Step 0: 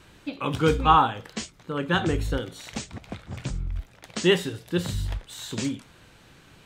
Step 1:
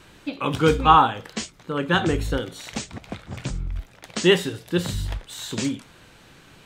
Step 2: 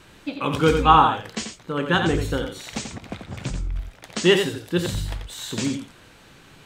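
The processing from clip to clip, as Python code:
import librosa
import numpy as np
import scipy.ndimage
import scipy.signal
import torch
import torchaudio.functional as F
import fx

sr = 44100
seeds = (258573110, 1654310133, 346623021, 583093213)

y1 = fx.peak_eq(x, sr, hz=75.0, db=-3.5, octaves=1.8)
y1 = F.gain(torch.from_numpy(y1), 3.5).numpy()
y2 = y1 + 10.0 ** (-7.0 / 20.0) * np.pad(y1, (int(88 * sr / 1000.0), 0))[:len(y1)]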